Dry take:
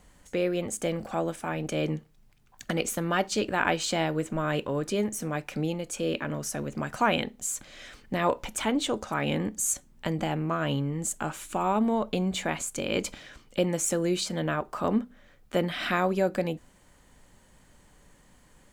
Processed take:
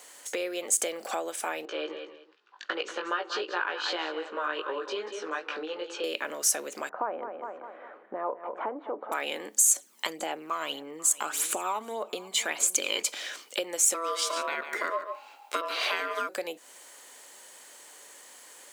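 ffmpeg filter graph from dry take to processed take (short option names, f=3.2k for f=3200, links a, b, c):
-filter_complex "[0:a]asettb=1/sr,asplit=3[a][b][c];[a]atrim=end=1.654[d];[b]atrim=start=1.65:end=6.04,asetpts=PTS-STARTPTS,afade=t=in:d=0.004:c=qsin,afade=t=out:st=4.386:d=0.004:c=qsin,highpass=330,equalizer=f=370:t=q:w=4:g=4,equalizer=f=680:t=q:w=4:g=-9,equalizer=f=1.1k:t=q:w=4:g=4,equalizer=f=1.5k:t=q:w=4:g=4,equalizer=f=2.2k:t=q:w=4:g=-9,equalizer=f=3.4k:t=q:w=4:g=-3,lowpass=f=3.7k:w=0.5412,lowpass=f=3.7k:w=1.3066,aecho=1:1:187|374:0.266|0.0506,atrim=end_sample=193599,flanger=delay=17:depth=2.7:speed=2.6[e];[c]atrim=start=6.036[f];[d][e]acrossfade=d=0.004:c1=hsin:c2=qsin[g];[g][f]acrossfade=d=0.004:c1=qsin:c2=hsin,asettb=1/sr,asplit=3[h][i][j];[h]atrim=end=6.894[k];[i]atrim=start=6.89:end=9.12,asetpts=PTS-STARTPTS,afade=t=in:d=0.004:c=qsin,afade=t=out:st=2.226:d=0.004:c=qsin,lowpass=f=1.2k:w=0.5412,lowpass=f=1.2k:w=1.3066,aecho=1:1:204|408|612|816:0.211|0.0972|0.0447|0.0206,atrim=end_sample=98343[l];[j]atrim=start=9.116[m];[k][l]acrossfade=d=0.004:c1=hsin:c2=qsin[n];[n][m]acrossfade=d=0.004:c1=qsin:c2=hsin,asettb=1/sr,asplit=3[o][p][q];[o]atrim=end=9.714[r];[p]atrim=start=9.71:end=13.03,asetpts=PTS-STARTPTS,afade=t=in:d=0.004:c=qsin,afade=t=out:st=3.316:d=0.004:c=qsin,aphaser=in_gain=1:out_gain=1:delay=1:decay=0.54:speed=1.7:type=sinusoidal,aecho=1:1:490:0.0944,atrim=end_sample=146412[s];[q]atrim=start=13.026[t];[r][s]acrossfade=d=0.004:c1=hsin:c2=qsin[u];[u][t]acrossfade=d=0.004:c1=qsin:c2=hsin,asettb=1/sr,asplit=3[v][w][x];[v]atrim=end=13.944[y];[w]atrim=start=13.94:end=16.29,asetpts=PTS-STARTPTS,afade=t=in:d=0.004:c=qsin,afade=t=out:st=2.346:d=0.004:c=qsin,equalizer=f=12k:t=o:w=2.3:g=-4.5,aeval=exprs='val(0)*sin(2*PI*830*n/s)':c=same,aecho=1:1:143:0.282,atrim=end_sample=103635[z];[x]atrim=start=16.286[aa];[y][z]acrossfade=d=0.004:c1=hsin:c2=qsin[ab];[ab][aa]acrossfade=d=0.004:c1=qsin:c2=hsin,acompressor=threshold=-35dB:ratio=6,highpass=f=380:w=0.5412,highpass=f=380:w=1.3066,highshelf=f=2.8k:g=10.5,volume=6.5dB"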